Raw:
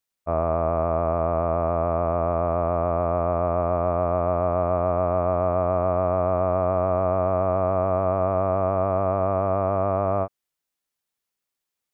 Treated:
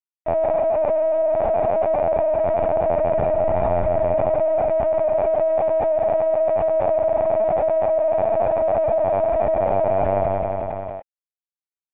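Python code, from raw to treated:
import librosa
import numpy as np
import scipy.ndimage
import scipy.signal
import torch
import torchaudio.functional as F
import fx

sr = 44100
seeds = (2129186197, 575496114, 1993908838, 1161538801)

y = fx.low_shelf(x, sr, hz=460.0, db=-7.5)
y = np.sign(y) * np.maximum(np.abs(y) - 10.0 ** (-49.0 / 20.0), 0.0)
y = fx.fixed_phaser(y, sr, hz=1200.0, stages=6)
y = fx.echo_feedback(y, sr, ms=92, feedback_pct=59, wet_db=-5.0)
y = fx.lpc_vocoder(y, sr, seeds[0], excitation='pitch_kept', order=16)
y = fx.env_flatten(y, sr, amount_pct=70)
y = y * librosa.db_to_amplitude(4.0)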